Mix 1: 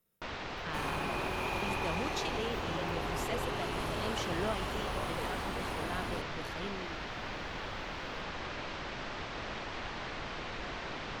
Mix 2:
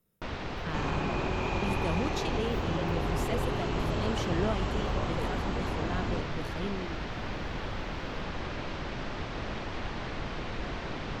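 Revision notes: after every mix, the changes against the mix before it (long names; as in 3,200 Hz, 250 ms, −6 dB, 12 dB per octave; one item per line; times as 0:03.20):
second sound: add linear-phase brick-wall low-pass 8,000 Hz
master: add low-shelf EQ 420 Hz +9.5 dB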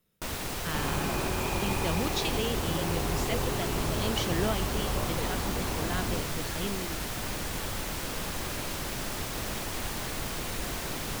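speech: add parametric band 3,500 Hz +8 dB 2.2 octaves
first sound: remove Gaussian smoothing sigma 2.2 samples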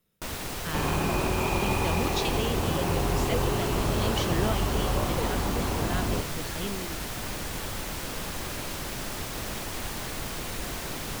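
second sound +5.0 dB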